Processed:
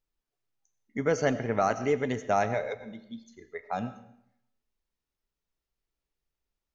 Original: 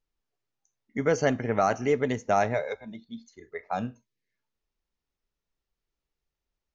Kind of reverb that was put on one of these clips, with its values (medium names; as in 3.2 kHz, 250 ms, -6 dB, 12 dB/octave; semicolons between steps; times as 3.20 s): algorithmic reverb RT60 0.74 s, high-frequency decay 0.85×, pre-delay 55 ms, DRR 13 dB; trim -2 dB